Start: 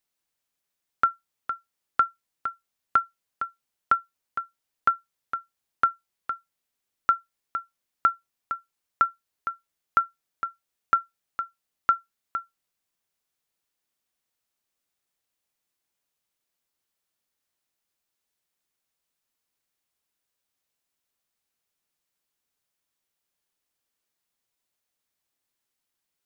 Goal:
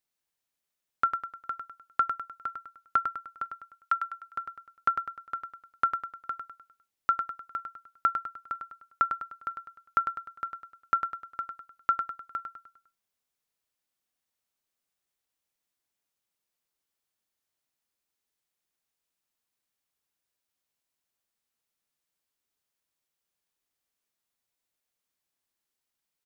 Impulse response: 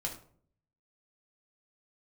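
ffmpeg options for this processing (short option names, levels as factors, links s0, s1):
-filter_complex "[0:a]asplit=3[s0][s1][s2];[s0]afade=t=out:st=3.44:d=0.02[s3];[s1]highpass=1100,afade=t=in:st=3.44:d=0.02,afade=t=out:st=3.99:d=0.02[s4];[s2]afade=t=in:st=3.99:d=0.02[s5];[s3][s4][s5]amix=inputs=3:normalize=0,aecho=1:1:101|202|303|404|505:0.447|0.197|0.0865|0.0381|0.0167,volume=0.631"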